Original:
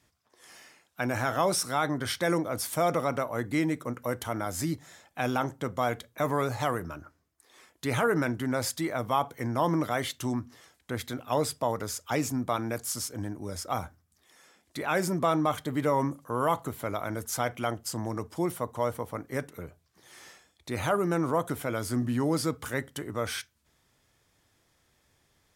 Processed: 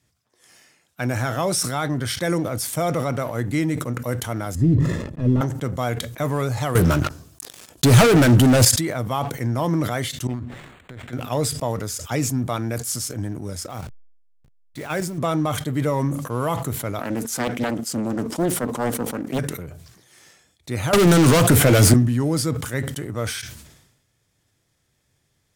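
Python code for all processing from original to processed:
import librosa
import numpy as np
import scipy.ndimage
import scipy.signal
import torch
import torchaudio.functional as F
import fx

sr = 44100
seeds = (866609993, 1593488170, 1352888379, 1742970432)

y = fx.chain(x, sr, fx.leveller(passes=3),
    fx.moving_average(points=58),
    fx.sustainer(db_per_s=54.0), at=(4.55, 5.41))
y = fx.chain(y, sr, fx.peak_eq(hz=2000.0, db=-11.0, octaves=0.41),
    fx.leveller(passes=5), at=(6.75, 8.65))
y = fx.chain(y, sr, fx.high_shelf(hz=4300.0, db=9.0),
    fx.over_compress(threshold_db=-42.0, ratio=-1.0),
    fx.resample_linear(factor=8), at=(10.27, 11.13))
y = fx.chain(y, sr, fx.delta_hold(step_db=-42.5),
    fx.level_steps(step_db=9), at=(13.7, 15.18))
y = fx.chain(y, sr, fx.highpass_res(hz=240.0, q=2.9),
    fx.doppler_dist(depth_ms=0.61), at=(16.99, 19.39))
y = fx.chain(y, sr, fx.leveller(passes=5),
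    fx.band_squash(depth_pct=100), at=(20.93, 21.94))
y = fx.leveller(y, sr, passes=1)
y = fx.graphic_eq(y, sr, hz=(125, 1000, 8000), db=(7, -4, 3))
y = fx.sustainer(y, sr, db_per_s=59.0)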